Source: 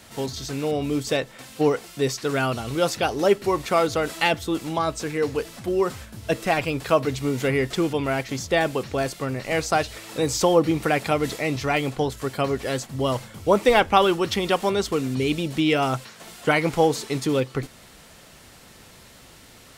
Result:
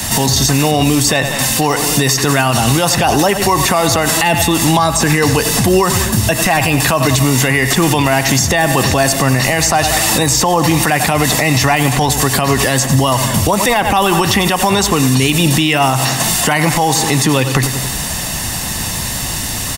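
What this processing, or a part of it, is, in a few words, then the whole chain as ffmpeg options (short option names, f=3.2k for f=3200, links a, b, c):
mastering chain: -filter_complex "[0:a]bass=f=250:g=3,treble=f=4k:g=8,equalizer=f=4.2k:t=o:w=0.77:g=-2,aecho=1:1:1.1:0.5,aecho=1:1:92|184|276|368|460:0.15|0.0778|0.0405|0.021|0.0109,acrossover=split=110|650|2800|7100[a][b][c][d][e];[a]acompressor=threshold=-46dB:ratio=4[f];[b]acompressor=threshold=-30dB:ratio=4[g];[c]acompressor=threshold=-23dB:ratio=4[h];[d]acompressor=threshold=-39dB:ratio=4[i];[e]acompressor=threshold=-37dB:ratio=4[j];[f][g][h][i][j]amix=inputs=5:normalize=0,acompressor=threshold=-32dB:ratio=1.5,alimiter=level_in=25.5dB:limit=-1dB:release=50:level=0:latency=1,volume=-2dB"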